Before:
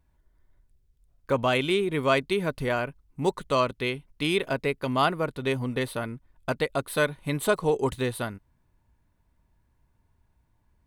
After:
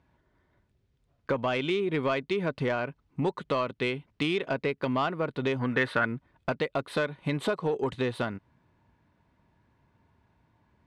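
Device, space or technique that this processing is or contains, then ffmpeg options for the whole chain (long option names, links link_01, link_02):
AM radio: -filter_complex "[0:a]highpass=120,lowpass=3800,acompressor=threshold=-33dB:ratio=4,asoftclip=type=tanh:threshold=-24.5dB,asettb=1/sr,asplit=3[link_01][link_02][link_03];[link_01]atrim=end=5.594[link_04];[link_02]atrim=start=5.59:end=6.05,asetpts=PTS-STARTPTS,afade=type=in:duration=0.004:curve=qsin,afade=type=out:start_time=0.456:duration=0.004:curve=qsin,equalizer=frequency=1600:width_type=o:width=0.73:gain=13.5[link_05];[link_03]atrim=start=6.046[link_06];[link_04][link_05]acrossfade=duration=0.004:curve1=hsin:curve2=qsin[link_07];[link_07][link_06]acrossfade=duration=0.004:curve1=qsin:curve2=hsin,volume=7.5dB"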